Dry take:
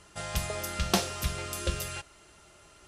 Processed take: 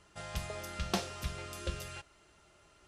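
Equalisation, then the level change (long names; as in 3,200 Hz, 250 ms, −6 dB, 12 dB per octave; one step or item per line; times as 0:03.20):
high-shelf EQ 8,800 Hz −10.5 dB
−6.5 dB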